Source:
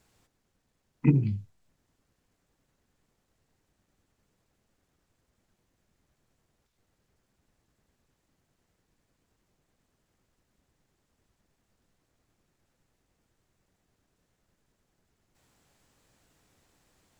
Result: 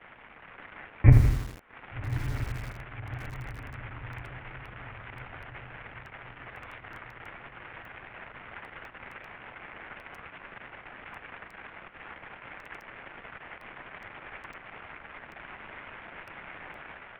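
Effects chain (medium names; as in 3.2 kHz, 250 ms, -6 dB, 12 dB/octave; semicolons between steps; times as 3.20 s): zero-crossing glitches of -22.5 dBFS; LPC vocoder at 8 kHz pitch kept; crossover distortion -46.5 dBFS; level rider gain up to 6.5 dB; mistuned SSB -170 Hz 170–2400 Hz; on a send: echo that smears into a reverb 1180 ms, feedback 53%, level -12 dB; on the sum: bit-crushed delay 82 ms, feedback 55%, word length 7-bit, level -8 dB; trim +5.5 dB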